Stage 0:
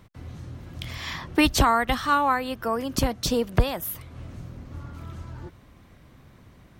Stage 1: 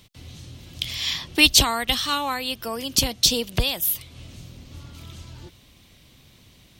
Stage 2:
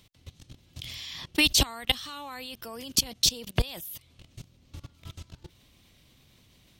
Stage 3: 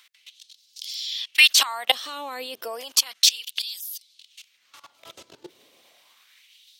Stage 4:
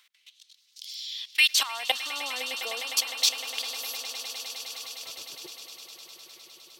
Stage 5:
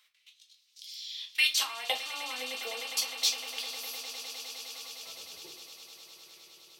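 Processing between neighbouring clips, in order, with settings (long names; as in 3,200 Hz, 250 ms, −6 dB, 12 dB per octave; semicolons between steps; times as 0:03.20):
high shelf with overshoot 2,200 Hz +12.5 dB, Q 1.5; level −3 dB
output level in coarse steps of 20 dB
auto-filter high-pass sine 0.32 Hz 390–4,900 Hz; level +4.5 dB
echo that builds up and dies away 102 ms, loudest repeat 8, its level −17 dB; level −6 dB
rectangular room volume 140 cubic metres, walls furnished, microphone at 1.4 metres; level −6.5 dB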